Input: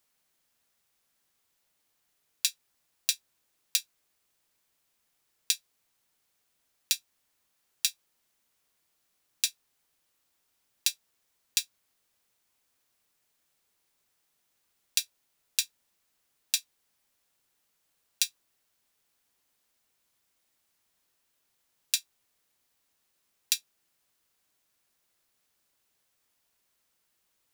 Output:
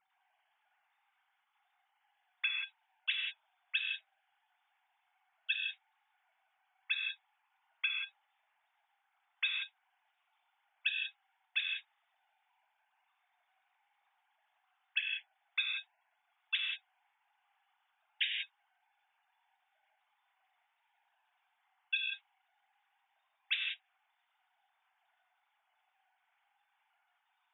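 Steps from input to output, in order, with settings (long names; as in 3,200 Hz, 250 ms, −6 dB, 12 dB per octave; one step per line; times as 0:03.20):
three sine waves on the formant tracks
high-shelf EQ 2,300 Hz −11.5 dB
reverb whose tail is shaped and stops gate 210 ms flat, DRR −0.5 dB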